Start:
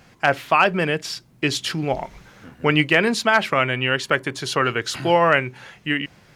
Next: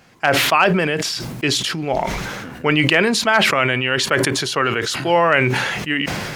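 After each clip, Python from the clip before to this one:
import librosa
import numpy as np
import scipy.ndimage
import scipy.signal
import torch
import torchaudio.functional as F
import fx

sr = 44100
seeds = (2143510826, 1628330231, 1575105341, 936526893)

y = fx.low_shelf(x, sr, hz=120.0, db=-7.5)
y = fx.sustainer(y, sr, db_per_s=26.0)
y = y * 10.0 ** (1.0 / 20.0)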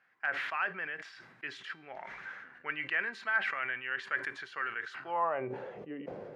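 y = fx.tilt_eq(x, sr, slope=-2.0)
y = fx.comb_fb(y, sr, f0_hz=390.0, decay_s=0.61, harmonics='all', damping=0.0, mix_pct=60)
y = fx.filter_sweep_bandpass(y, sr, from_hz=1700.0, to_hz=500.0, start_s=4.93, end_s=5.57, q=3.3)
y = y * 10.0 ** (-2.0 / 20.0)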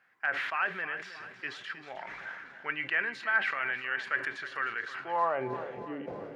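y = fx.echo_feedback(x, sr, ms=315, feedback_pct=53, wet_db=-13.0)
y = y * 10.0 ** (2.5 / 20.0)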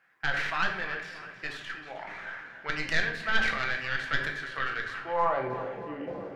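y = fx.tracing_dist(x, sr, depth_ms=0.1)
y = fx.room_shoebox(y, sr, seeds[0], volume_m3=150.0, walls='mixed', distance_m=0.71)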